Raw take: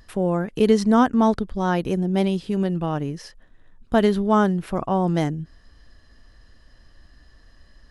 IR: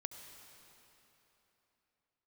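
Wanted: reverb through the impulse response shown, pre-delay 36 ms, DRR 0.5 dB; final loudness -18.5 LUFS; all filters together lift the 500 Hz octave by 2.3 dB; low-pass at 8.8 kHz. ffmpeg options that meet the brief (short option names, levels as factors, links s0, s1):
-filter_complex "[0:a]lowpass=8800,equalizer=f=500:t=o:g=3,asplit=2[s0][s1];[1:a]atrim=start_sample=2205,adelay=36[s2];[s1][s2]afir=irnorm=-1:irlink=0,volume=1.26[s3];[s0][s3]amix=inputs=2:normalize=0,volume=0.891"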